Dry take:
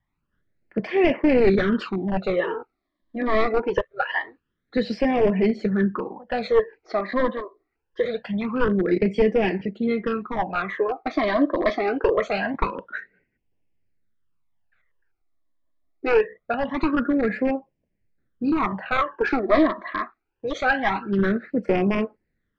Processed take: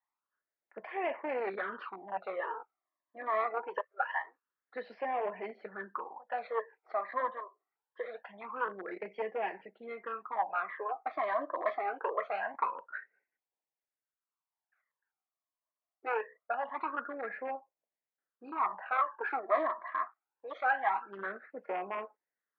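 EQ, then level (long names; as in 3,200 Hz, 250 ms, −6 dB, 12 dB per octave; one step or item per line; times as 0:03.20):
four-pole ladder band-pass 1,100 Hz, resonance 35%
high-frequency loss of the air 150 metres
+4.0 dB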